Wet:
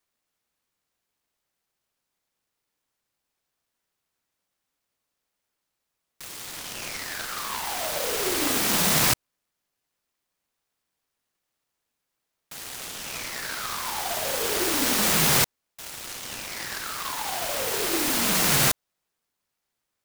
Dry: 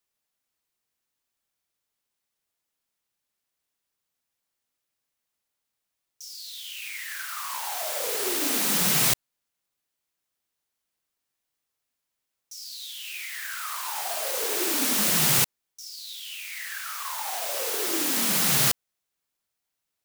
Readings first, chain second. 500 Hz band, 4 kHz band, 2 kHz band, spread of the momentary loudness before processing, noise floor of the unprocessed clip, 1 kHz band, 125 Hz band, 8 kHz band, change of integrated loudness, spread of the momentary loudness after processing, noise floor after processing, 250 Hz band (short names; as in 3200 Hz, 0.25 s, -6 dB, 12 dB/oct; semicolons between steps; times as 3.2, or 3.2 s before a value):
+3.5 dB, +2.0 dB, +3.0 dB, 17 LU, -83 dBFS, +3.5 dB, +3.0 dB, +0.5 dB, +0.5 dB, 16 LU, -82 dBFS, +3.0 dB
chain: noise-modulated delay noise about 2700 Hz, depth 0.08 ms; gain +2.5 dB